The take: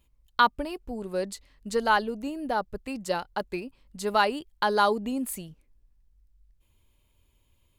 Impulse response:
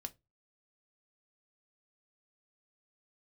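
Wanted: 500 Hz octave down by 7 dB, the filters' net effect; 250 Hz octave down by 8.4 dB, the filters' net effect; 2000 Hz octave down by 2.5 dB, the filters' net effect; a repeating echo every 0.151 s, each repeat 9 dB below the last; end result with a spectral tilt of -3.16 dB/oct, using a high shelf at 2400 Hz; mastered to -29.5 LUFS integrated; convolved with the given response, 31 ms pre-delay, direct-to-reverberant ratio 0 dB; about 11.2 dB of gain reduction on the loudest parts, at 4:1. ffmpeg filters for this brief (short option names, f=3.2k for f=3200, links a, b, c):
-filter_complex "[0:a]equalizer=f=250:t=o:g=-8.5,equalizer=f=500:t=o:g=-6.5,equalizer=f=2k:t=o:g=-5,highshelf=f=2.4k:g=4,acompressor=threshold=-30dB:ratio=4,aecho=1:1:151|302|453|604:0.355|0.124|0.0435|0.0152,asplit=2[a][b];[1:a]atrim=start_sample=2205,adelay=31[c];[b][c]afir=irnorm=-1:irlink=0,volume=3.5dB[d];[a][d]amix=inputs=2:normalize=0,volume=3.5dB"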